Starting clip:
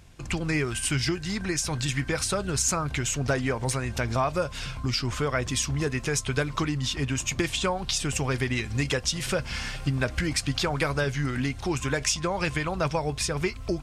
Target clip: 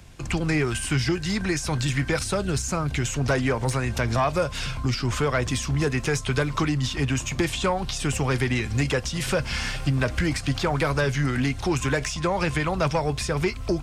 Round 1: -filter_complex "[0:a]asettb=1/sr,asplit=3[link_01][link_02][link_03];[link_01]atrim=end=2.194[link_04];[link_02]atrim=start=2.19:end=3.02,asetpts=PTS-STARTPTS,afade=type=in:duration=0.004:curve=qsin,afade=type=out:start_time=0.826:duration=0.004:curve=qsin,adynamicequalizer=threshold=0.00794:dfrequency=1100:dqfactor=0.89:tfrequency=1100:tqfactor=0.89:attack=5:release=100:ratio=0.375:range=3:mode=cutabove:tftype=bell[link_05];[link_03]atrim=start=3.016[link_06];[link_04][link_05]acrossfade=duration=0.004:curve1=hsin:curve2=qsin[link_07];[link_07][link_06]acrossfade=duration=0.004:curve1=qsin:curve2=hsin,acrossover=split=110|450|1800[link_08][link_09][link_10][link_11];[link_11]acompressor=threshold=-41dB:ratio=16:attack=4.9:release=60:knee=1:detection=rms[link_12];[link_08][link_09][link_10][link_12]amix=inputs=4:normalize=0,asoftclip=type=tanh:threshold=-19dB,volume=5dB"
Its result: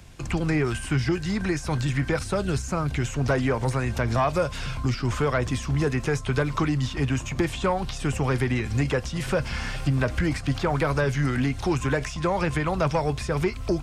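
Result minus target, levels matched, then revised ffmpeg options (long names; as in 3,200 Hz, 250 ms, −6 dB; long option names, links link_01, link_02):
downward compressor: peak gain reduction +8 dB
-filter_complex "[0:a]asettb=1/sr,asplit=3[link_01][link_02][link_03];[link_01]atrim=end=2.194[link_04];[link_02]atrim=start=2.19:end=3.02,asetpts=PTS-STARTPTS,afade=type=in:duration=0.004:curve=qsin,afade=type=out:start_time=0.826:duration=0.004:curve=qsin,adynamicequalizer=threshold=0.00794:dfrequency=1100:dqfactor=0.89:tfrequency=1100:tqfactor=0.89:attack=5:release=100:ratio=0.375:range=3:mode=cutabove:tftype=bell[link_05];[link_03]atrim=start=3.016[link_06];[link_04][link_05]acrossfade=duration=0.004:curve1=hsin:curve2=qsin[link_07];[link_07][link_06]acrossfade=duration=0.004:curve1=qsin:curve2=hsin,acrossover=split=110|450|1800[link_08][link_09][link_10][link_11];[link_11]acompressor=threshold=-32.5dB:ratio=16:attack=4.9:release=60:knee=1:detection=rms[link_12];[link_08][link_09][link_10][link_12]amix=inputs=4:normalize=0,asoftclip=type=tanh:threshold=-19dB,volume=5dB"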